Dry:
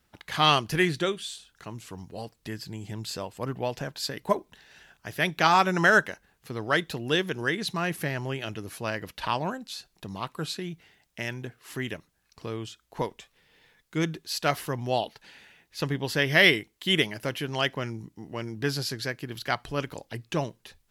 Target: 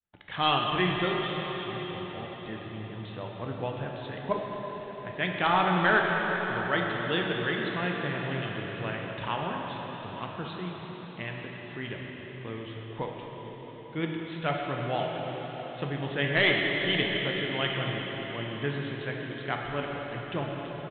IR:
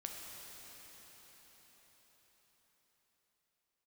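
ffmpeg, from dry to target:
-filter_complex "[0:a]agate=range=0.0224:threshold=0.00141:ratio=3:detection=peak,aresample=8000,aeval=exprs='clip(val(0),-1,0.168)':c=same,aresample=44100[s0];[1:a]atrim=start_sample=2205[s1];[s0][s1]afir=irnorm=-1:irlink=0"

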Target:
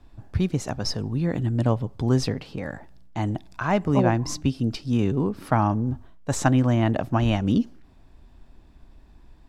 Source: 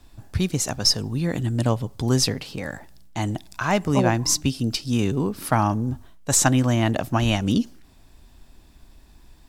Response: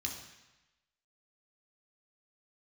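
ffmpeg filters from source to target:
-af "lowpass=f=1500:p=1"

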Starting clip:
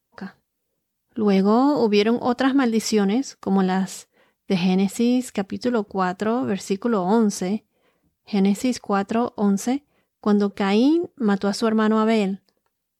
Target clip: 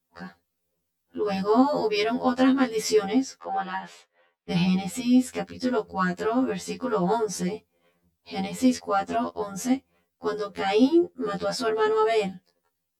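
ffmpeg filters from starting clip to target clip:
-filter_complex "[0:a]asettb=1/sr,asplit=3[s0][s1][s2];[s0]atrim=end=3.394[s3];[s1]atrim=start=3.39:end=4.51,asetpts=PTS-STARTPTS,afade=t=in:d=0.004:c=qsin,afade=t=out:st=1.116:d=0.004:c=qsin,acrossover=split=410 3700:gain=0.126 1 0.1[s4][s5][s6];[s4][s5][s6]amix=inputs=3:normalize=0[s7];[s2]atrim=start=4.506[s8];[s3][s7]acrossfade=d=0.004:c1=hsin:c2=qsin[s9];[s9][s8]acrossfade=d=0.004:c1=qsin:c2=hsin,afftfilt=real='re*2*eq(mod(b,4),0)':imag='im*2*eq(mod(b,4),0)':win_size=2048:overlap=0.75"

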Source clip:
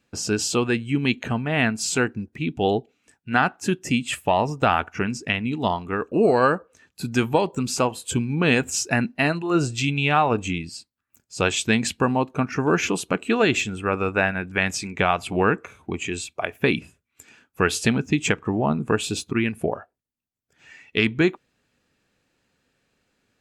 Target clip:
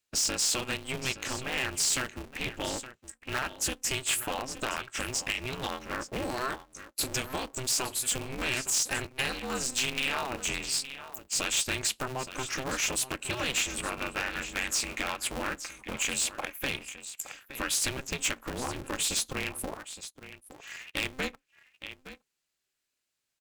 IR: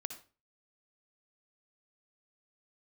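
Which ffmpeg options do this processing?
-filter_complex "[0:a]acompressor=threshold=0.0316:ratio=3,bandreject=f=50:t=h:w=6,bandreject=f=100:t=h:w=6,bandreject=f=150:t=h:w=6,acrossover=split=4600[s0][s1];[s1]acompressor=threshold=0.0141:ratio=4:attack=1:release=60[s2];[s0][s2]amix=inputs=2:normalize=0,crystalizer=i=9.5:c=0,asplit=2[s3][s4];[s4]aecho=0:1:866:0.188[s5];[s3][s5]amix=inputs=2:normalize=0,afftdn=nr=19:nf=-45,asoftclip=type=tanh:threshold=0.178,aeval=exprs='val(0)*sgn(sin(2*PI*130*n/s))':c=same,volume=0.501"

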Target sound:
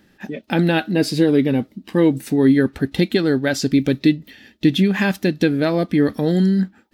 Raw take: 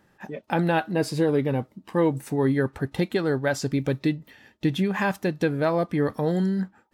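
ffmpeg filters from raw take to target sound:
-af "equalizer=f=125:t=o:w=1:g=-7,equalizer=f=250:t=o:w=1:g=5,equalizer=f=500:t=o:w=1:g=-4,equalizer=f=1000:t=o:w=1:g=-11,equalizer=f=4000:t=o:w=1:g=4,equalizer=f=8000:t=o:w=1:g=-4,volume=2.66"

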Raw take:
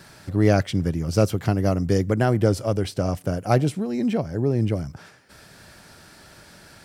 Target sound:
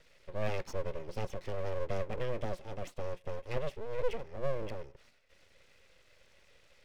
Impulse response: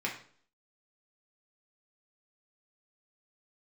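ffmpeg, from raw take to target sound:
-filter_complex "[0:a]asplit=3[s0][s1][s2];[s0]bandpass=f=270:t=q:w=8,volume=1[s3];[s1]bandpass=f=2290:t=q:w=8,volume=0.501[s4];[s2]bandpass=f=3010:t=q:w=8,volume=0.355[s5];[s3][s4][s5]amix=inputs=3:normalize=0,aeval=exprs='abs(val(0))':c=same,asplit=2[s6][s7];[1:a]atrim=start_sample=2205,atrim=end_sample=3087[s8];[s7][s8]afir=irnorm=-1:irlink=0,volume=0.0794[s9];[s6][s9]amix=inputs=2:normalize=0,volume=1.12"

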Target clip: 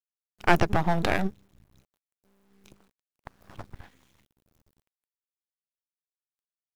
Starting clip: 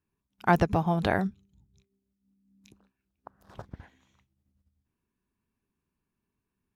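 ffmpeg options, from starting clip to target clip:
-af "aeval=exprs='max(val(0),0)':c=same,acrusher=bits=11:mix=0:aa=0.000001,volume=2.11"

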